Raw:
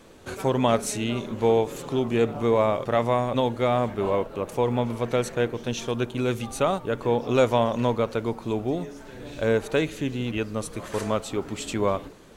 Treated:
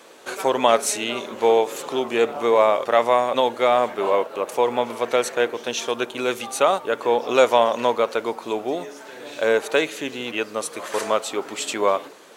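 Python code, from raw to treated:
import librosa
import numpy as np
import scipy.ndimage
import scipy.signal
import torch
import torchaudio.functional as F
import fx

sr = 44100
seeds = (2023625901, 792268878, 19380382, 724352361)

y = scipy.signal.sosfilt(scipy.signal.butter(2, 480.0, 'highpass', fs=sr, output='sos'), x)
y = F.gain(torch.from_numpy(y), 7.0).numpy()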